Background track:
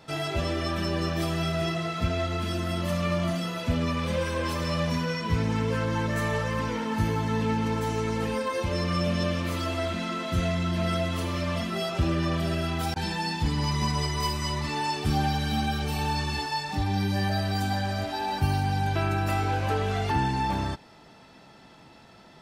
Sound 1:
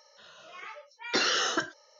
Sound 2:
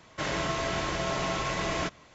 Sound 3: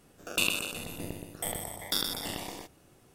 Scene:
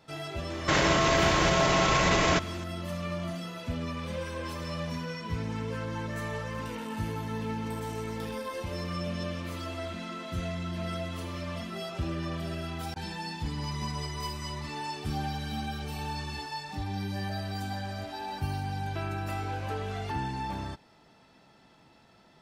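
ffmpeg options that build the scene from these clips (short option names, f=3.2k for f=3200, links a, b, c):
-filter_complex "[0:a]volume=-7.5dB[a];[2:a]alimiter=level_in=25dB:limit=-1dB:release=50:level=0:latency=1[b];[3:a]acompressor=threshold=-34dB:ratio=6:attack=3.2:release=140:knee=1:detection=peak[c];[b]atrim=end=2.14,asetpts=PTS-STARTPTS,volume=-14dB,afade=t=in:d=0.004:c=hsin,afade=t=out:st=2.136:d=0.004:c=hsin,adelay=500[d];[c]atrim=end=3.14,asetpts=PTS-STARTPTS,volume=-13.5dB,afade=t=in:d=0.004:c=hsin,afade=t=out:st=3.136:d=0.004:c=hsin,adelay=6280[e];[a][d][e]amix=inputs=3:normalize=0"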